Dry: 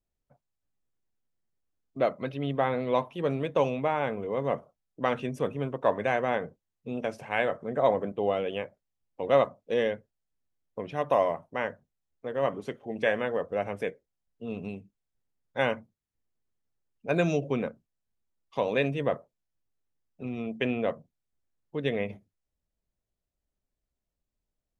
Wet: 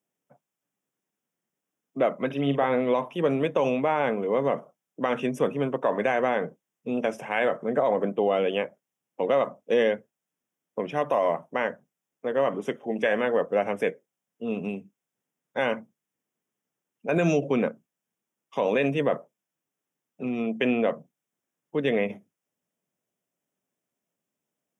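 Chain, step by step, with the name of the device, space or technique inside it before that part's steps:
PA system with an anti-feedback notch (high-pass filter 160 Hz 24 dB per octave; Butterworth band-reject 4,300 Hz, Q 2.6; brickwall limiter −20 dBFS, peak gain reduction 9.5 dB)
0:02.26–0:02.68: double-tracking delay 43 ms −9 dB
level +6.5 dB

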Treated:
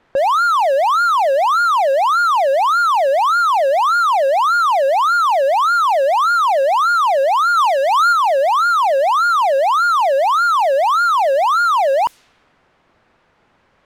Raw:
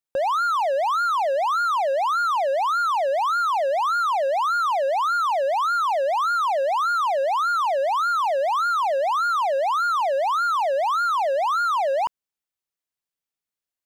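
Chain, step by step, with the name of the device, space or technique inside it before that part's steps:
0:07.57–0:08.13: tilt shelving filter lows −4 dB, about 780 Hz
cassette deck with a dynamic noise filter (white noise bed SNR 33 dB; low-pass that shuts in the quiet parts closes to 1,400 Hz, open at −20.5 dBFS)
level +7.5 dB

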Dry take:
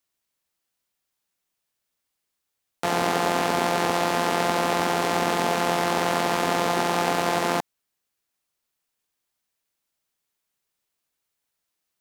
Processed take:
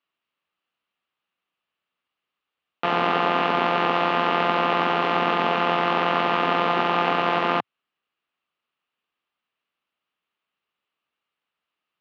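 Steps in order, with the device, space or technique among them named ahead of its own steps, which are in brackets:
guitar cabinet (loudspeaker in its box 95–3,500 Hz, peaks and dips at 110 Hz −10 dB, 1,200 Hz +8 dB, 2,800 Hz +7 dB)

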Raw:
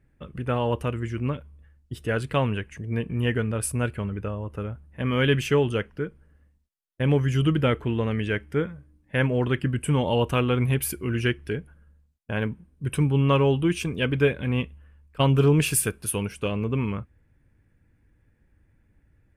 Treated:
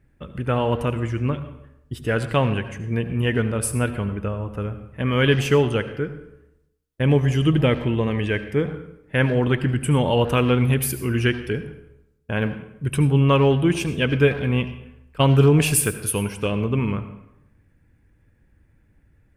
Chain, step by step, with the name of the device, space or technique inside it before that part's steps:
saturated reverb return (on a send at −10 dB: convolution reverb RT60 0.85 s, pre-delay 68 ms + soft clipping −18 dBFS, distortion −10 dB)
0:07.08–0:08.71: on the sum: notch filter 1,400 Hz, Q 6.8
level +3.5 dB

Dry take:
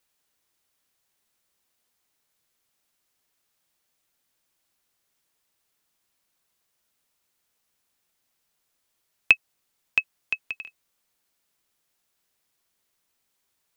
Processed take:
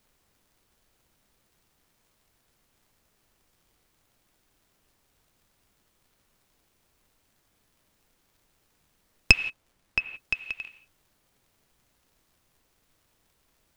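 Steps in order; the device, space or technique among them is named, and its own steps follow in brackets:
0:09.34–0:09.99: Bessel low-pass filter 2,100 Hz
reverb whose tail is shaped and stops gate 200 ms flat, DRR 10 dB
record under a worn stylus (stylus tracing distortion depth 0.068 ms; surface crackle; pink noise bed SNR 34 dB)

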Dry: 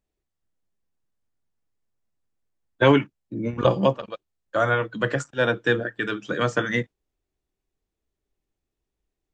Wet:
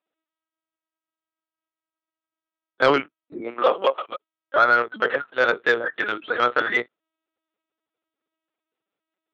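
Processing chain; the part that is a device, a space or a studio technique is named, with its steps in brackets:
talking toy (linear-prediction vocoder at 8 kHz pitch kept; high-pass filter 420 Hz 12 dB per octave; parametric band 1,300 Hz +8 dB 0.26 octaves; soft clipping −10.5 dBFS, distortion −17 dB)
0:03.41–0:04.08: high-pass filter 180 Hz → 630 Hz 12 dB per octave
level +4 dB

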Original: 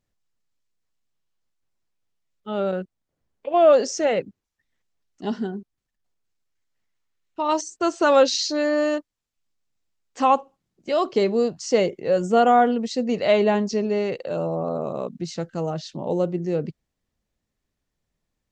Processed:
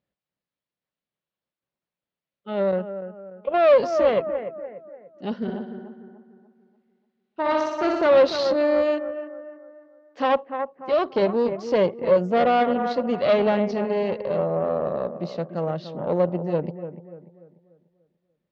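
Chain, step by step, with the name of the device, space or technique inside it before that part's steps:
0:05.36–0:08.07: flutter between parallel walls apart 10.5 metres, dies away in 1.1 s
analogue delay pedal into a guitar amplifier (bucket-brigade delay 293 ms, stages 4,096, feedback 41%, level −10 dB; tube saturation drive 18 dB, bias 0.8; loudspeaker in its box 78–4,200 Hz, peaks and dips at 90 Hz −10 dB, 180 Hz +4 dB, 560 Hz +7 dB)
level +1.5 dB

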